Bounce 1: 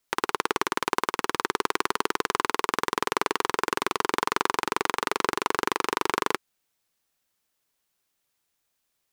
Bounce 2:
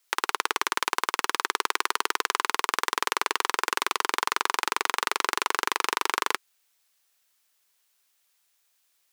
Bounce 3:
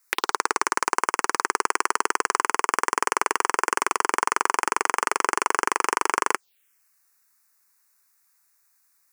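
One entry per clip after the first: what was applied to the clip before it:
high-pass filter 1,300 Hz 6 dB per octave; in parallel at −1.5 dB: compressor whose output falls as the input rises −34 dBFS, ratio −1
phaser swept by the level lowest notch 540 Hz, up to 3,800 Hz, full sweep at −25.5 dBFS; level +5.5 dB

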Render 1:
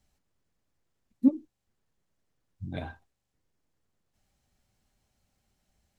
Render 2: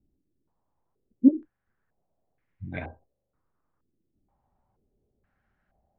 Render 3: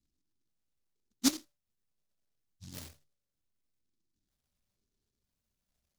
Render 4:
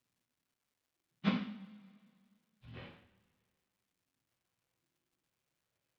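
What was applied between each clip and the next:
low-pass on a step sequencer 2.1 Hz 320–2,100 Hz
mains-hum notches 50/100/150 Hz; tuned comb filter 580 Hz, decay 0.33 s, mix 60%; short delay modulated by noise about 5,000 Hz, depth 0.39 ms; level −3 dB
coupled-rooms reverb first 0.51 s, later 2.1 s, from −20 dB, DRR −4 dB; single-sideband voice off tune −66 Hz 160–3,100 Hz; surface crackle 470 per second −68 dBFS; level −3 dB

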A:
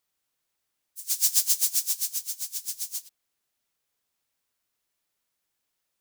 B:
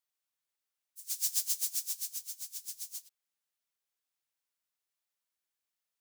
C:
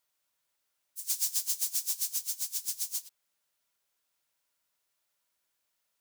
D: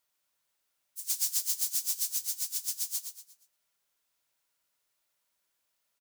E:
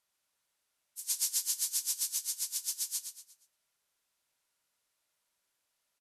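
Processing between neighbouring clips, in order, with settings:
low-shelf EQ 470 Hz −9.5 dB; level −9 dB
downward compressor 10 to 1, threshold −35 dBFS, peak gain reduction 10 dB; hollow resonant body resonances 600/970/1,400 Hz, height 6 dB; level +8.5 dB
repeating echo 118 ms, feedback 39%, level −8 dB
linear-phase brick-wall low-pass 13,000 Hz

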